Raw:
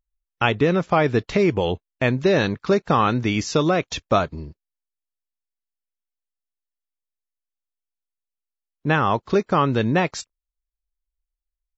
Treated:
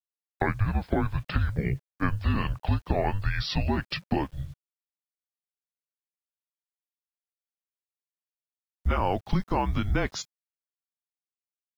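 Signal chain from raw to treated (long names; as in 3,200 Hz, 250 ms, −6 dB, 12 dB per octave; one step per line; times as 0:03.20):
pitch glide at a constant tempo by −6 semitones ending unshifted
downward compressor 5 to 1, threshold −22 dBFS, peak gain reduction 8.5 dB
frequency shifter −200 Hz
bit reduction 10 bits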